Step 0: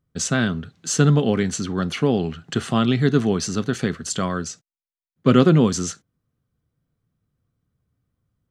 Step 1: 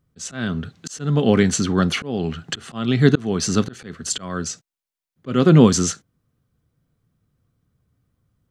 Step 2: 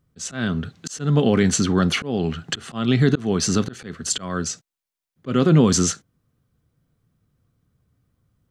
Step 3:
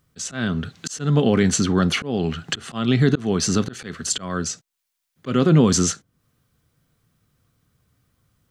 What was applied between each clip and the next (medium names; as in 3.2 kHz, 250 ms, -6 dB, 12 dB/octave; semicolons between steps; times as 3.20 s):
slow attack 366 ms; trim +5.5 dB
peak limiter -8 dBFS, peak gain reduction 6.5 dB; trim +1 dB
tape noise reduction on one side only encoder only